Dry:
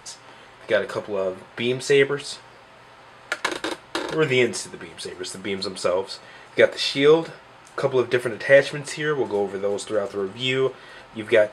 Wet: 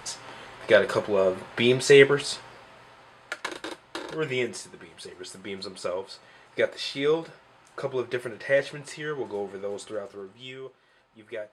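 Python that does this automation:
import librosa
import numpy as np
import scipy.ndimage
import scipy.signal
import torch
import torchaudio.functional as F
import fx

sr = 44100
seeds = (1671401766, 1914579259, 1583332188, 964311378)

y = fx.gain(x, sr, db=fx.line((2.23, 2.5), (3.43, -8.5), (9.87, -8.5), (10.59, -19.0)))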